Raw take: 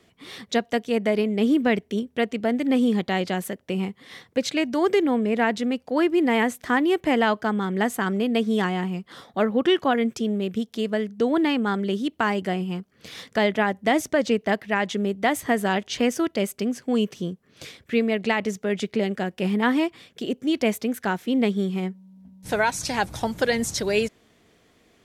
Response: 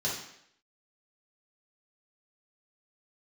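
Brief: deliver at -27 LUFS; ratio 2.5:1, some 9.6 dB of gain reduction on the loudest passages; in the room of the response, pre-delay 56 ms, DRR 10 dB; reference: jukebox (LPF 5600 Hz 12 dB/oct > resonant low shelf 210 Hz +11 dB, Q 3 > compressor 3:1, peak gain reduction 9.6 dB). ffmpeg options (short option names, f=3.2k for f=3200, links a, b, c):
-filter_complex "[0:a]acompressor=threshold=-31dB:ratio=2.5,asplit=2[a][b];[1:a]atrim=start_sample=2205,adelay=56[c];[b][c]afir=irnorm=-1:irlink=0,volume=-17dB[d];[a][d]amix=inputs=2:normalize=0,lowpass=5.6k,lowshelf=f=210:t=q:w=3:g=11,acompressor=threshold=-29dB:ratio=3,volume=6dB"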